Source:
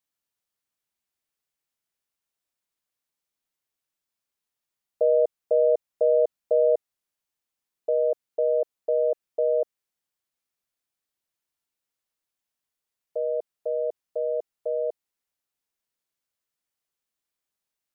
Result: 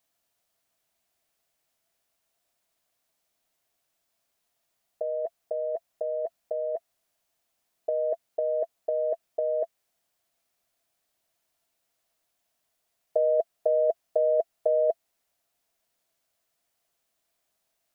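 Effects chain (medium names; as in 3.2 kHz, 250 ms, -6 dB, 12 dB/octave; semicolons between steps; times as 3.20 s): peaking EQ 670 Hz +12.5 dB 0.26 oct; compressor with a negative ratio -26 dBFS, ratio -1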